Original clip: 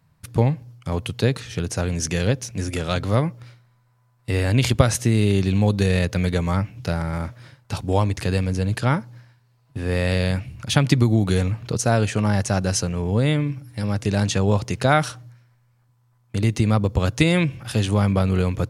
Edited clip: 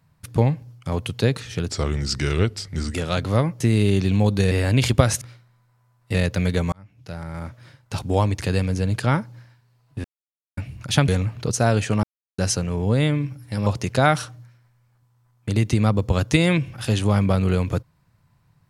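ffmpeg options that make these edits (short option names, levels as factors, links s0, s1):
-filter_complex "[0:a]asplit=14[s0][s1][s2][s3][s4][s5][s6][s7][s8][s9][s10][s11][s12][s13];[s0]atrim=end=1.694[s14];[s1]atrim=start=1.69:end=2.73,asetpts=PTS-STARTPTS,asetrate=36603,aresample=44100[s15];[s2]atrim=start=2.726:end=3.392[s16];[s3]atrim=start=5.018:end=5.932[s17];[s4]atrim=start=4.318:end=5.022[s18];[s5]atrim=start=3.388:end=4.322[s19];[s6]atrim=start=5.928:end=6.51,asetpts=PTS-STARTPTS,afade=t=out:st=0.578:d=0.004:c=hsin[s20];[s7]atrim=start=6.51:end=9.83,asetpts=PTS-STARTPTS,afade=t=in:d=1.27,afade=t=out:st=3.316:d=0.004:c=hsin[s21];[s8]atrim=start=9.83:end=10.36,asetpts=PTS-STARTPTS,volume=0[s22];[s9]atrim=start=10.36:end=10.872,asetpts=PTS-STARTPTS,afade=t=in:d=0.004:c=hsin[s23];[s10]atrim=start=11.338:end=12.29,asetpts=PTS-STARTPTS,afade=t=out:st=0.948:d=0.004:c=hsin[s24];[s11]atrim=start=12.29:end=12.64,asetpts=PTS-STARTPTS,volume=0[s25];[s12]atrim=start=12.64:end=13.922,asetpts=PTS-STARTPTS,afade=t=in:d=0.004:c=hsin[s26];[s13]atrim=start=14.528[s27];[s14][s15]acrossfade=d=0.004:c1=hsin:c2=hsin[s28];[s28][s16]acrossfade=d=0.004:c1=hsin:c2=hsin[s29];[s29][s17]acrossfade=d=0.004:c1=hsin:c2=hsin[s30];[s30][s18]acrossfade=d=0.004:c1=hsin:c2=hsin[s31];[s31][s19]acrossfade=d=0.004:c1=hsin:c2=hsin[s32];[s20][s21][s22][s23]concat=n=4:v=0:a=1[s33];[s32][s33]acrossfade=d=0.004:c1=hsin:c2=hsin[s34];[s24][s25][s26]concat=n=3:v=0:a=1[s35];[s34][s35]acrossfade=d=0.004:c1=hsin:c2=hsin[s36];[s36][s27]acrossfade=d=0.004:c1=hsin:c2=hsin"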